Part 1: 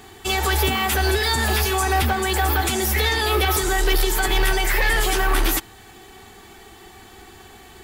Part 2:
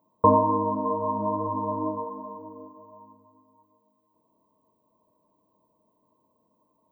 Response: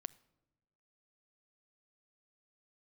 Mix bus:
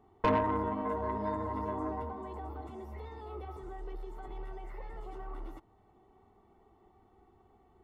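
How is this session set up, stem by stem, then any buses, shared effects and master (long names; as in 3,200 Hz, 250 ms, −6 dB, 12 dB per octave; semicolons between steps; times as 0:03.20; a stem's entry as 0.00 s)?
−17.5 dB, 0.00 s, no send, downward compressor 2 to 1, threshold −24 dBFS, peak gain reduction 5 dB; Savitzky-Golay smoothing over 65 samples
−4.0 dB, 0.00 s, no send, low-pass filter 1,200 Hz; tube saturation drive 17 dB, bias 0.6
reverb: not used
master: no processing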